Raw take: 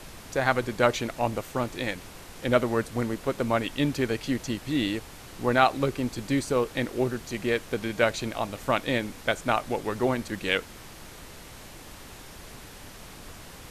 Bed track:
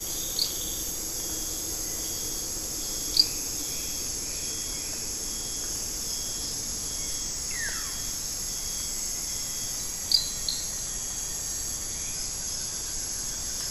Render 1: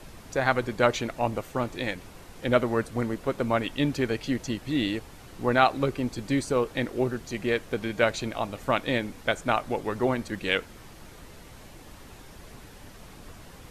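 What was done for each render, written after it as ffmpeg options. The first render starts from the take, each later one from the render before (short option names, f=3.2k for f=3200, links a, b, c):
-af "afftdn=nr=6:nf=-46"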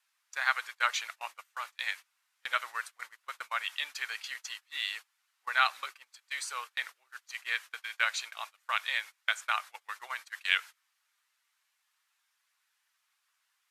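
-af "highpass=f=1.2k:w=0.5412,highpass=f=1.2k:w=1.3066,agate=range=-24dB:threshold=-41dB:ratio=16:detection=peak"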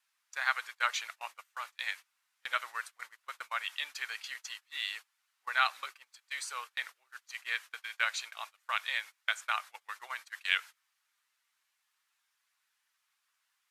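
-af "volume=-2dB"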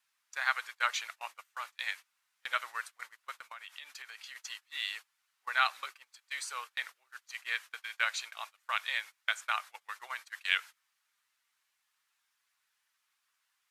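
-filter_complex "[0:a]asettb=1/sr,asplit=3[a][b][c];[a]atrim=end=3.374[d];[b]atrim=start=3.37:end=4.36,asetpts=PTS-STARTPTS,afade=t=in:d=0.004:c=qsin,afade=t=out:st=0.986:d=0.004:c=qsin,acompressor=threshold=-43dB:ratio=6:attack=3.2:release=140:knee=1:detection=peak[e];[c]atrim=start=4.356[f];[d][e]acrossfade=d=0.004:c1=hsin:c2=qsin[g];[g][f]acrossfade=d=0.004:c1=qsin:c2=hsin"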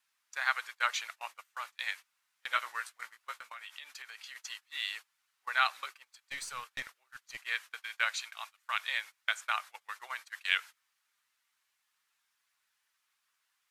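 -filter_complex "[0:a]asettb=1/sr,asplit=3[a][b][c];[a]atrim=end=2.514[d];[b]atrim=start=2.51:end=3.77,asetpts=PTS-STARTPTS,afade=t=in:d=0.004:c=qsin,afade=t=out:st=1.256:d=0.004:c=qsin,asplit=2[e][f];[f]adelay=17,volume=-5dB[g];[e][g]amix=inputs=2:normalize=0,atrim=end_sample=55566[h];[c]atrim=start=3.766[i];[d][h]acrossfade=d=0.004:c1=hsin:c2=qsin[j];[j][i]acrossfade=d=0.004:c1=qsin:c2=hsin,asettb=1/sr,asplit=3[k][l][m];[k]atrim=end=6.054[n];[l]atrim=start=6.05:end=7.43,asetpts=PTS-STARTPTS,afade=t=in:d=0.004:c=qsin,afade=t=out:st=1.376:d=0.004:c=qsin,aeval=exprs='(tanh(28.2*val(0)+0.35)-tanh(0.35))/28.2':c=same[o];[m]atrim=start=7.426[p];[n][o]acrossfade=d=0.004:c1=hsin:c2=qsin[q];[q][p]acrossfade=d=0.004:c1=qsin:c2=hsin,asettb=1/sr,asplit=3[r][s][t];[r]atrim=end=8.134[u];[s]atrim=start=8.13:end=8.8,asetpts=PTS-STARTPTS,afade=t=in:d=0.004:c=qsin,afade=t=out:st=0.666:d=0.004:c=qsin,equalizer=f=470:w=1.3:g=-8[v];[t]atrim=start=8.796[w];[u][v]acrossfade=d=0.004:c1=hsin:c2=qsin[x];[x][w]acrossfade=d=0.004:c1=qsin:c2=hsin"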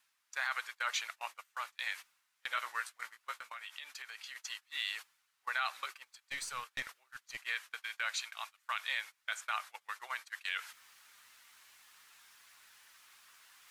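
-af "alimiter=limit=-22.5dB:level=0:latency=1:release=14,areverse,acompressor=mode=upward:threshold=-45dB:ratio=2.5,areverse"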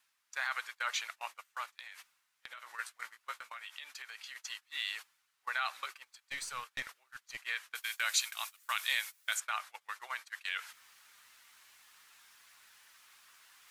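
-filter_complex "[0:a]asplit=3[a][b][c];[a]afade=t=out:st=1.65:d=0.02[d];[b]acompressor=threshold=-44dB:ratio=12:attack=3.2:release=140:knee=1:detection=peak,afade=t=in:st=1.65:d=0.02,afade=t=out:st=2.78:d=0.02[e];[c]afade=t=in:st=2.78:d=0.02[f];[d][e][f]amix=inputs=3:normalize=0,asettb=1/sr,asplit=3[g][h][i];[g]atrim=end=7.754[j];[h]atrim=start=7.75:end=9.4,asetpts=PTS-STARTPTS,afade=t=in:d=0.004:c=qsin,afade=t=out:st=1.646:d=0.004:c=qsin,aemphasis=mode=production:type=75kf[k];[i]atrim=start=9.396[l];[j][k]acrossfade=d=0.004:c1=hsin:c2=qsin[m];[m][l]acrossfade=d=0.004:c1=qsin:c2=hsin"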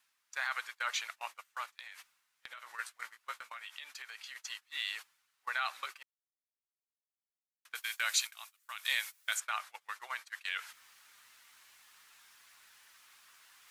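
-filter_complex "[0:a]asplit=5[a][b][c][d][e];[a]atrim=end=6.03,asetpts=PTS-STARTPTS,afade=t=out:st=6.026:d=0.004:c=hsin[f];[b]atrim=start=6.03:end=7.65,asetpts=PTS-STARTPTS,volume=0[g];[c]atrim=start=7.65:end=8.272,asetpts=PTS-STARTPTS,afade=t=in:d=0.004:c=hsin[h];[d]atrim=start=8.268:end=8.852,asetpts=PTS-STARTPTS,volume=-10dB[i];[e]atrim=start=8.848[j];[f][g][h]concat=n=3:v=0:a=1[k];[k][i]acrossfade=d=0.004:c1=hsin:c2=hsin[l];[l][j]acrossfade=d=0.004:c1=hsin:c2=hsin"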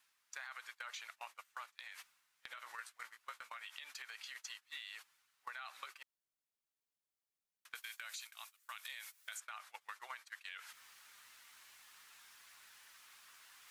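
-af "alimiter=level_in=3dB:limit=-24dB:level=0:latency=1:release=42,volume=-3dB,acompressor=threshold=-45dB:ratio=6"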